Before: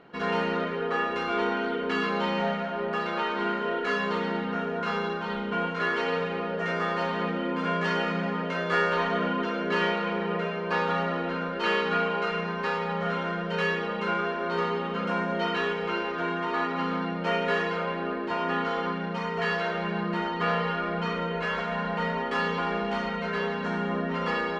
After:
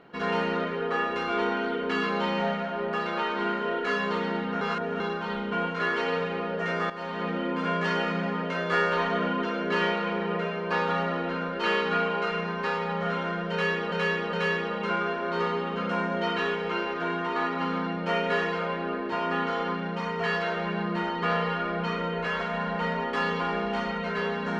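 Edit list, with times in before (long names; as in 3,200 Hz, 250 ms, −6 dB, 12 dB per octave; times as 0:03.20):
0:04.61–0:05.00: reverse
0:06.90–0:07.35: fade in, from −12.5 dB
0:13.51–0:13.92: repeat, 3 plays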